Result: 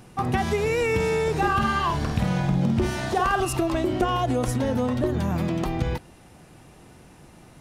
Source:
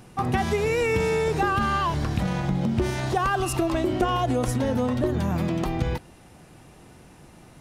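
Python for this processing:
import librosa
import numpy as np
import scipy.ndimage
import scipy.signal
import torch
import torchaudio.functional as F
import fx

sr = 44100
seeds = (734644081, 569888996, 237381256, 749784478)

y = fx.doubler(x, sr, ms=50.0, db=-5.0, at=(1.37, 3.45))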